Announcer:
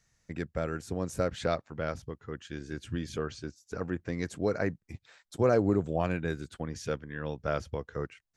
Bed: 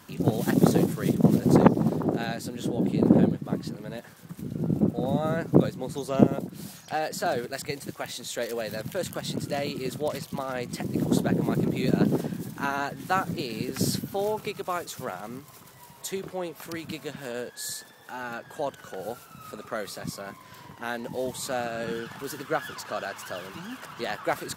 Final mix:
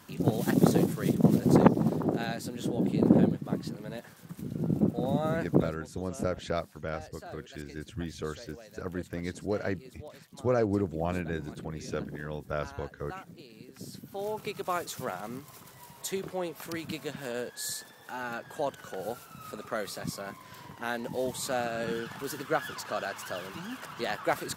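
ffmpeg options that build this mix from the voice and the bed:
ffmpeg -i stem1.wav -i stem2.wav -filter_complex "[0:a]adelay=5050,volume=-2dB[link_01];[1:a]volume=14.5dB,afade=type=out:start_time=5.41:duration=0.46:silence=0.16788,afade=type=in:start_time=13.92:duration=0.79:silence=0.141254[link_02];[link_01][link_02]amix=inputs=2:normalize=0" out.wav

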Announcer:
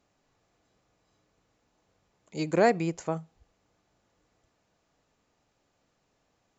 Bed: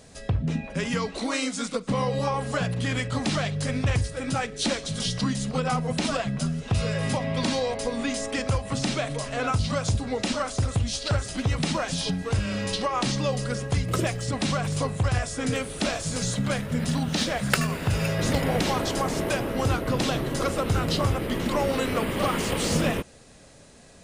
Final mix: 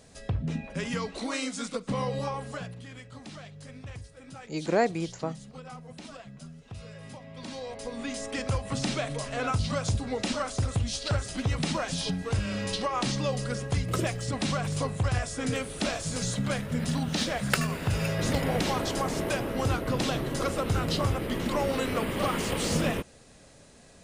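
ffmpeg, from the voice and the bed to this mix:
ffmpeg -i stem1.wav -i stem2.wav -filter_complex "[0:a]adelay=2150,volume=-2dB[link_01];[1:a]volume=10.5dB,afade=type=out:start_time=2.11:duration=0.74:silence=0.211349,afade=type=in:start_time=7.33:duration=1.31:silence=0.177828[link_02];[link_01][link_02]amix=inputs=2:normalize=0" out.wav

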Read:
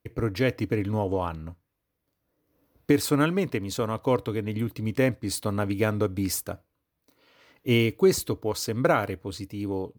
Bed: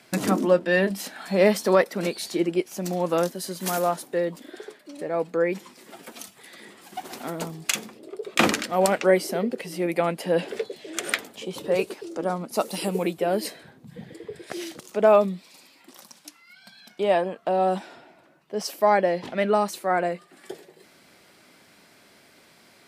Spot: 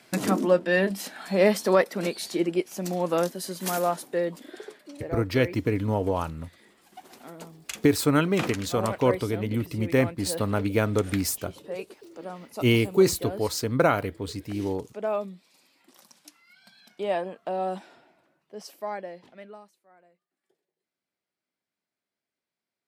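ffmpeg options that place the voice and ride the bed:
ffmpeg -i stem1.wav -i stem2.wav -filter_complex "[0:a]adelay=4950,volume=1dB[link_01];[1:a]volume=4dB,afade=type=out:start_time=4.88:duration=0.36:silence=0.316228,afade=type=in:start_time=15.49:duration=0.81:silence=0.530884,afade=type=out:start_time=17.42:duration=2.34:silence=0.0334965[link_02];[link_01][link_02]amix=inputs=2:normalize=0" out.wav

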